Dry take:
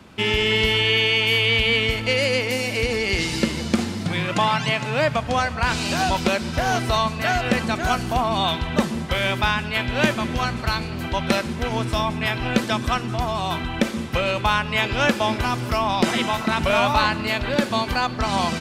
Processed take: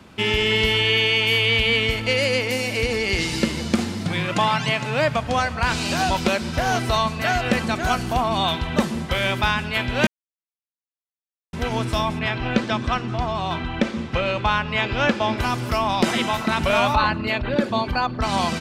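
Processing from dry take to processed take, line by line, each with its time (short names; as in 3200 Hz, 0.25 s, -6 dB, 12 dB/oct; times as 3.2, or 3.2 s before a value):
10.07–11.53 mute
12.19–15.38 air absorption 100 m
16.95–18.22 formant sharpening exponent 1.5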